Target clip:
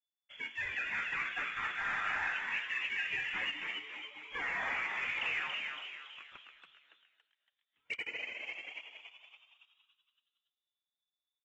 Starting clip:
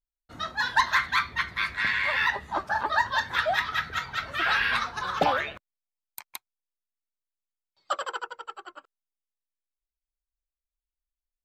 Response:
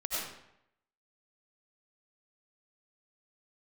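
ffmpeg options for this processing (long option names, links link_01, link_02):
-filter_complex "[0:a]asettb=1/sr,asplit=3[link_01][link_02][link_03];[link_01]atrim=end=5.084[link_04];[link_02]atrim=start=5.08:end=6.31,asetpts=PTS-STARTPTS,afade=type=in:duration=0.004:curve=qsin,afade=type=out:start_time=1.226:duration=0.004:curve=qsin,aemphasis=mode=reproduction:type=cd[link_05];[link_03]atrim=start=6.306[link_06];[link_04][link_05]acrossfade=duration=0.004:curve1=hsin:curve2=qsin[link_07];[link_07][link_06]acrossfade=duration=0.004:curve1=qsin:curve2=hsin,acrossover=split=760[link_08][link_09];[link_08]acompressor=threshold=-45dB:ratio=12[link_10];[link_10][link_09]amix=inputs=2:normalize=0,alimiter=limit=-22dB:level=0:latency=1:release=21,lowpass=frequency=3000:width_type=q:width=0.5098,lowpass=frequency=3000:width_type=q:width=0.6013,lowpass=frequency=3000:width_type=q:width=0.9,lowpass=frequency=3000:width_type=q:width=2.563,afreqshift=-3500,asplit=3[link_11][link_12][link_13];[link_11]afade=type=out:start_time=3.5:duration=0.02[link_14];[link_12]asplit=3[link_15][link_16][link_17];[link_15]bandpass=frequency=300:width_type=q:width=8,volume=0dB[link_18];[link_16]bandpass=frequency=870:width_type=q:width=8,volume=-6dB[link_19];[link_17]bandpass=frequency=2240:width_type=q:width=8,volume=-9dB[link_20];[link_18][link_19][link_20]amix=inputs=3:normalize=0,afade=type=in:start_time=3.5:duration=0.02,afade=type=out:start_time=4.33:duration=0.02[link_21];[link_13]afade=type=in:start_time=4.33:duration=0.02[link_22];[link_14][link_21][link_22]amix=inputs=3:normalize=0,asplit=7[link_23][link_24][link_25][link_26][link_27][link_28][link_29];[link_24]adelay=281,afreqshift=140,volume=-4dB[link_30];[link_25]adelay=562,afreqshift=280,volume=-10.6dB[link_31];[link_26]adelay=843,afreqshift=420,volume=-17.1dB[link_32];[link_27]adelay=1124,afreqshift=560,volume=-23.7dB[link_33];[link_28]adelay=1405,afreqshift=700,volume=-30.2dB[link_34];[link_29]adelay=1686,afreqshift=840,volume=-36.8dB[link_35];[link_23][link_30][link_31][link_32][link_33][link_34][link_35]amix=inputs=7:normalize=0,asplit=2[link_36][link_37];[1:a]atrim=start_sample=2205,adelay=113[link_38];[link_37][link_38]afir=irnorm=-1:irlink=0,volume=-19.5dB[link_39];[link_36][link_39]amix=inputs=2:normalize=0,acrusher=bits=5:mode=log:mix=0:aa=0.000001,volume=-6.5dB" -ar 24000 -c:a aac -b:a 24k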